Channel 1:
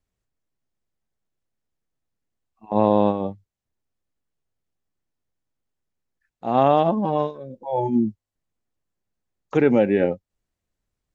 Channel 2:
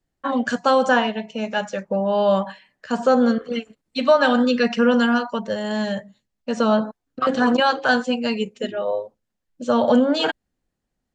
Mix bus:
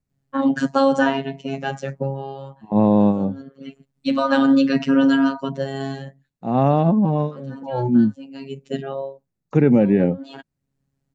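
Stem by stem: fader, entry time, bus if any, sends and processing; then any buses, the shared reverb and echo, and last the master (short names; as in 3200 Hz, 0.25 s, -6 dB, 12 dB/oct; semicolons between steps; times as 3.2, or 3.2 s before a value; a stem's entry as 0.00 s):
-4.0 dB, 0.00 s, no send, notch 3200 Hz, Q 6.1
-1.0 dB, 0.10 s, no send, robotiser 136 Hz; auto duck -22 dB, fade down 0.60 s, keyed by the first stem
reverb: off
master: bell 160 Hz +14.5 dB 1.6 oct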